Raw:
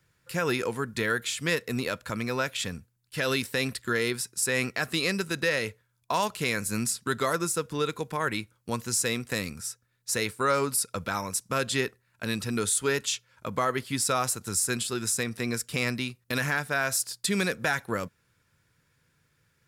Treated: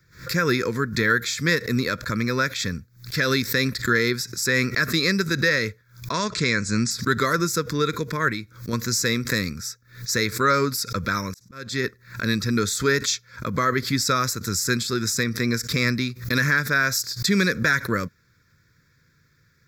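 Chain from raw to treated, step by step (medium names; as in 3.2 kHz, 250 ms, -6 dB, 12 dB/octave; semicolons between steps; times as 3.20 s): 6.11–6.91 s: steep low-pass 9.7 kHz 96 dB/octave; 8.31–8.73 s: compression 3:1, threshold -34 dBFS, peak gain reduction 6 dB; 11.21–11.84 s: slow attack 481 ms; static phaser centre 2.9 kHz, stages 6; swell ahead of each attack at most 140 dB/s; trim +8.5 dB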